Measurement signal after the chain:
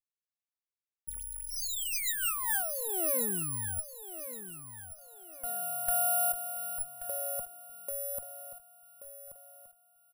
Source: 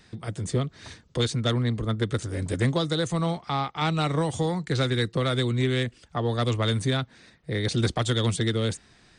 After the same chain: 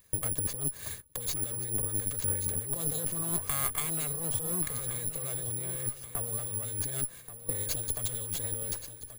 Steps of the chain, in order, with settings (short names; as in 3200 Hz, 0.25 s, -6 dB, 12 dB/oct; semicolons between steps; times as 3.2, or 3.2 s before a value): minimum comb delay 1.8 ms; gate -49 dBFS, range -11 dB; low shelf 380 Hz +3 dB; negative-ratio compressor -32 dBFS, ratio -1; careless resampling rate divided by 4×, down filtered, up zero stuff; feedback echo 1.131 s, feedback 38%, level -12 dB; gain -7.5 dB